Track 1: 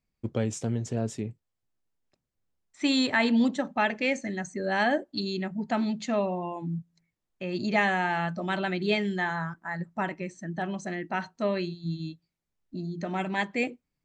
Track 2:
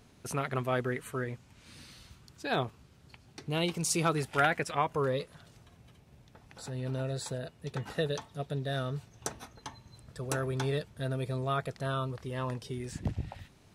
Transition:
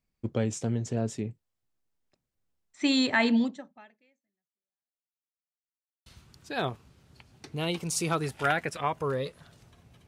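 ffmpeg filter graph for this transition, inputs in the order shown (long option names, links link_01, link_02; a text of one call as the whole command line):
ffmpeg -i cue0.wav -i cue1.wav -filter_complex "[0:a]apad=whole_dur=10.07,atrim=end=10.07,asplit=2[link_01][link_02];[link_01]atrim=end=5.09,asetpts=PTS-STARTPTS,afade=type=out:start_time=3.36:duration=1.73:curve=exp[link_03];[link_02]atrim=start=5.09:end=6.06,asetpts=PTS-STARTPTS,volume=0[link_04];[1:a]atrim=start=2:end=6.01,asetpts=PTS-STARTPTS,afade=type=in:duration=0.004:curve=hsin[link_05];[link_03][link_04][link_05]concat=n=3:v=0:a=1" out.wav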